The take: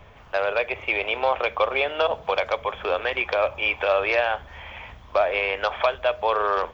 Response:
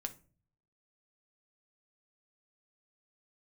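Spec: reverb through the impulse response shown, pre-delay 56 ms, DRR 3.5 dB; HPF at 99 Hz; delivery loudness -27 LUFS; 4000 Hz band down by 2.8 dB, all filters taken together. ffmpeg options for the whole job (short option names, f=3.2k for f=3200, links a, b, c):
-filter_complex "[0:a]highpass=99,equalizer=f=4k:t=o:g=-4,asplit=2[a][b];[1:a]atrim=start_sample=2205,adelay=56[c];[b][c]afir=irnorm=-1:irlink=0,volume=-2dB[d];[a][d]amix=inputs=2:normalize=0,volume=-4dB"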